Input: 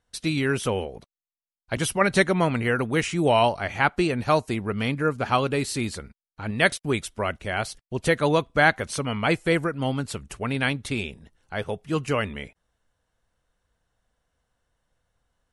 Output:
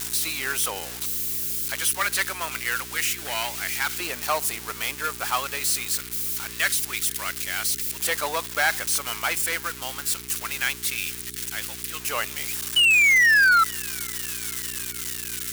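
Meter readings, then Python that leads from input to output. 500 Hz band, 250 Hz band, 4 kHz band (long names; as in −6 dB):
−11.5 dB, −15.5 dB, +6.5 dB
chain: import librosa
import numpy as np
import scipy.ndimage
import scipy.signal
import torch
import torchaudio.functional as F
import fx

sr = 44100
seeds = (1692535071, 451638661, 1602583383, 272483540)

y = x + 0.5 * 10.0 ** (-19.0 / 20.0) * np.diff(np.sign(x), prepend=np.sign(x[:1]))
y = fx.spec_paint(y, sr, seeds[0], shape='fall', start_s=12.76, length_s=0.88, low_hz=1300.0, high_hz=3000.0, level_db=-15.0)
y = np.clip(y, -10.0 ** (-15.5 / 20.0), 10.0 ** (-15.5 / 20.0))
y = fx.filter_lfo_highpass(y, sr, shape='saw_up', hz=0.25, low_hz=830.0, high_hz=1700.0, q=0.96)
y = fx.dmg_buzz(y, sr, base_hz=60.0, harmonics=7, level_db=-45.0, tilt_db=-2, odd_only=False)
y = fx.echo_wet_highpass(y, sr, ms=467, feedback_pct=77, hz=2100.0, wet_db=-22.5)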